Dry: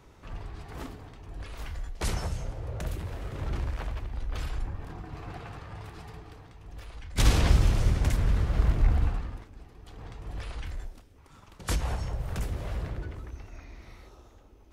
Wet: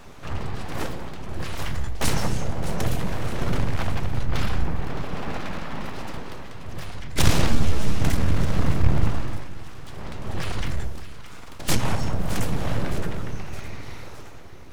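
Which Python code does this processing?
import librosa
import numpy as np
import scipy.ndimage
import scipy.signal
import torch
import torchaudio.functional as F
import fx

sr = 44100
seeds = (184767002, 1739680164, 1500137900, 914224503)

p1 = fx.diode_clip(x, sr, knee_db=-17.0)
p2 = fx.peak_eq(p1, sr, hz=8800.0, db=-7.5, octaves=1.0, at=(4.25, 6.07))
p3 = fx.rider(p2, sr, range_db=5, speed_s=0.5)
p4 = p2 + F.gain(torch.from_numpy(p3), 1.5).numpy()
p5 = np.abs(p4)
p6 = p5 + fx.echo_split(p5, sr, split_hz=1000.0, low_ms=164, high_ms=615, feedback_pct=52, wet_db=-13, dry=0)
p7 = fx.ensemble(p6, sr, at=(7.46, 8.0))
y = F.gain(torch.from_numpy(p7), 3.0).numpy()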